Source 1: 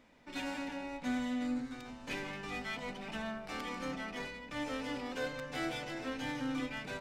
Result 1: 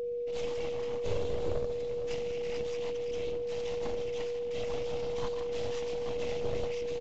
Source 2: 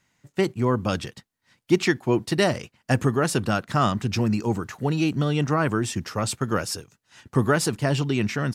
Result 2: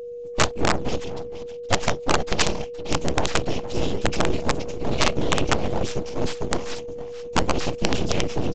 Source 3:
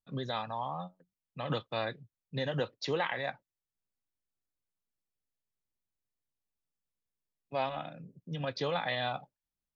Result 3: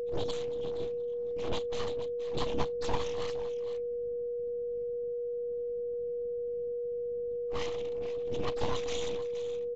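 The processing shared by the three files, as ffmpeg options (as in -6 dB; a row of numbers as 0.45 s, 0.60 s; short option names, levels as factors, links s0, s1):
-filter_complex "[0:a]aecho=1:1:41|469:0.141|0.224,apsyclip=3.98,aeval=exprs='val(0)+0.00631*(sin(2*PI*50*n/s)+sin(2*PI*2*50*n/s)/2+sin(2*PI*3*50*n/s)/3+sin(2*PI*4*50*n/s)/4+sin(2*PI*5*50*n/s)/5)':c=same,afftfilt=real='re*(1-between(b*sr/4096,560,2300))':imag='im*(1-between(b*sr/4096,560,2300))':win_size=4096:overlap=0.75,afftfilt=real='hypot(re,im)*cos(2*PI*random(0))':imag='hypot(re,im)*sin(2*PI*random(1))':win_size=512:overlap=0.75,agate=range=0.0224:threshold=0.00398:ratio=3:detection=peak,aeval=exprs='abs(val(0))':c=same,asplit=2[s0][s1];[s1]acrusher=samples=10:mix=1:aa=0.000001:lfo=1:lforange=16:lforate=2.3,volume=0.447[s2];[s0][s2]amix=inputs=2:normalize=0,aeval=exprs='val(0)+0.0501*sin(2*PI*480*n/s)':c=same,aresample=16000,aeval=exprs='(mod(1.58*val(0)+1,2)-1)/1.58':c=same,aresample=44100,volume=0.501"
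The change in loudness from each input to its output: +4.5 LU, -1.0 LU, +1.0 LU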